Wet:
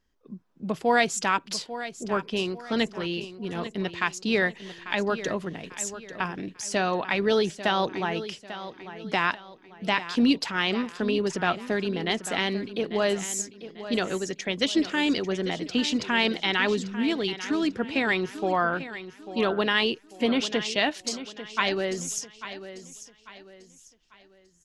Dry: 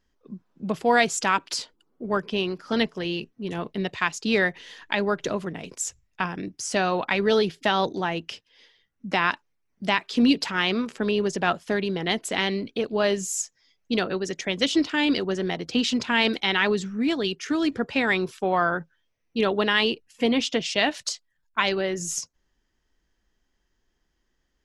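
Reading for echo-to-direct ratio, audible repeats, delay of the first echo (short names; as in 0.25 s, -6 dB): -12.5 dB, 3, 0.844 s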